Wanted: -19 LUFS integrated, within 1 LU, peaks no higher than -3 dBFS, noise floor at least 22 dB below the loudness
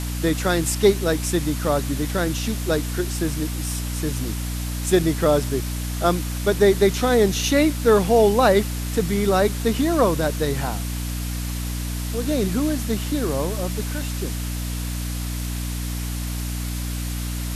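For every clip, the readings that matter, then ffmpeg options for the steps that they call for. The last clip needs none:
hum 60 Hz; harmonics up to 300 Hz; hum level -25 dBFS; noise floor -27 dBFS; noise floor target -45 dBFS; loudness -22.5 LUFS; peak -3.0 dBFS; loudness target -19.0 LUFS
-> -af "bandreject=f=60:t=h:w=6,bandreject=f=120:t=h:w=6,bandreject=f=180:t=h:w=6,bandreject=f=240:t=h:w=6,bandreject=f=300:t=h:w=6"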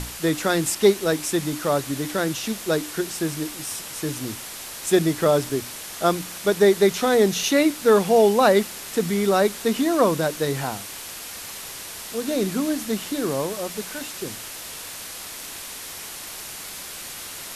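hum none; noise floor -36 dBFS; noise floor target -46 dBFS
-> -af "afftdn=nr=10:nf=-36"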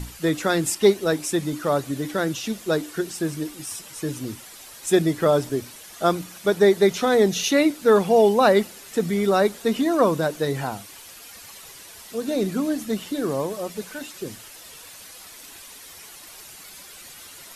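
noise floor -44 dBFS; noise floor target -45 dBFS
-> -af "afftdn=nr=6:nf=-44"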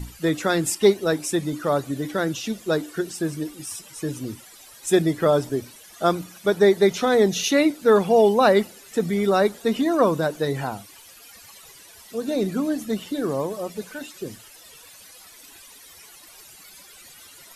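noise floor -47 dBFS; loudness -22.0 LUFS; peak -3.5 dBFS; loudness target -19.0 LUFS
-> -af "volume=3dB,alimiter=limit=-3dB:level=0:latency=1"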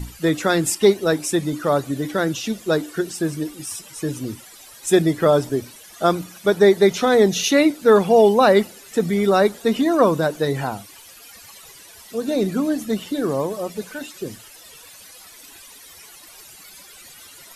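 loudness -19.5 LUFS; peak -3.0 dBFS; noise floor -44 dBFS

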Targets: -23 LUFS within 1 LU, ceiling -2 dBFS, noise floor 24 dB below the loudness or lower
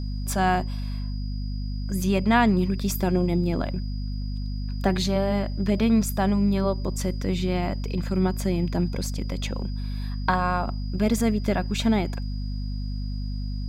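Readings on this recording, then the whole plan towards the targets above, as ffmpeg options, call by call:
hum 50 Hz; harmonics up to 250 Hz; hum level -27 dBFS; steady tone 4900 Hz; tone level -47 dBFS; loudness -26.0 LUFS; peak -7.5 dBFS; loudness target -23.0 LUFS
-> -af "bandreject=f=50:t=h:w=6,bandreject=f=100:t=h:w=6,bandreject=f=150:t=h:w=6,bandreject=f=200:t=h:w=6,bandreject=f=250:t=h:w=6"
-af "bandreject=f=4.9k:w=30"
-af "volume=3dB"

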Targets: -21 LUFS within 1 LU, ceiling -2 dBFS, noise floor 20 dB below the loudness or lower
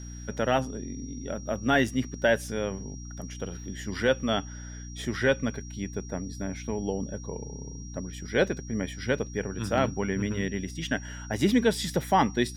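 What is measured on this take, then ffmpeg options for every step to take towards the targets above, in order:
hum 60 Hz; harmonics up to 300 Hz; hum level -38 dBFS; steady tone 5700 Hz; tone level -47 dBFS; loudness -29.0 LUFS; peak -11.5 dBFS; loudness target -21.0 LUFS
-> -af "bandreject=f=60:t=h:w=6,bandreject=f=120:t=h:w=6,bandreject=f=180:t=h:w=6,bandreject=f=240:t=h:w=6,bandreject=f=300:t=h:w=6"
-af "bandreject=f=5.7k:w=30"
-af "volume=8dB"

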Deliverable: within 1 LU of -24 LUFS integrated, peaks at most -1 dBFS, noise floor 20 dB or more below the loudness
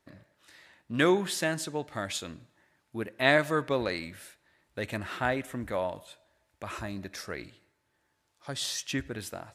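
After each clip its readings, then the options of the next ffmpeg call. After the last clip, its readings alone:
loudness -31.0 LUFS; peak -7.0 dBFS; loudness target -24.0 LUFS
-> -af "volume=7dB,alimiter=limit=-1dB:level=0:latency=1"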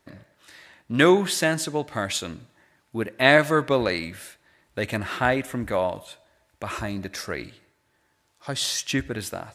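loudness -24.0 LUFS; peak -1.0 dBFS; noise floor -68 dBFS

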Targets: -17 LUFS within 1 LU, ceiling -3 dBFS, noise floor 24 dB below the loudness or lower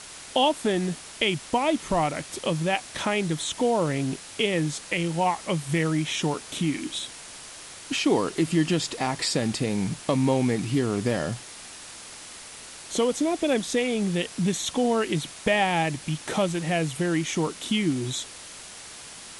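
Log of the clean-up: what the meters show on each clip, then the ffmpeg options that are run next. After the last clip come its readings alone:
noise floor -43 dBFS; noise floor target -50 dBFS; loudness -26.0 LUFS; peak -8.5 dBFS; loudness target -17.0 LUFS
-> -af "afftdn=nr=7:nf=-43"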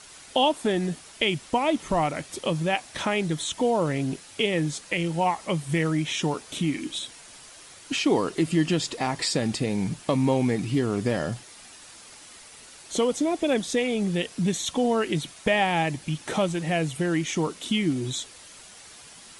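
noise floor -48 dBFS; noise floor target -50 dBFS
-> -af "afftdn=nr=6:nf=-48"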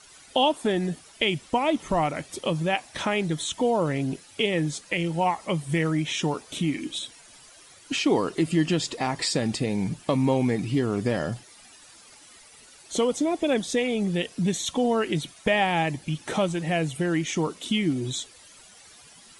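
noise floor -51 dBFS; loudness -26.0 LUFS; peak -8.5 dBFS; loudness target -17.0 LUFS
-> -af "volume=9dB,alimiter=limit=-3dB:level=0:latency=1"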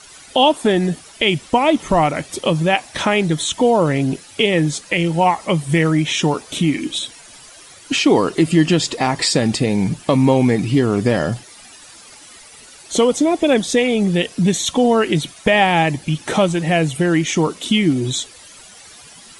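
loudness -17.0 LUFS; peak -3.0 dBFS; noise floor -42 dBFS

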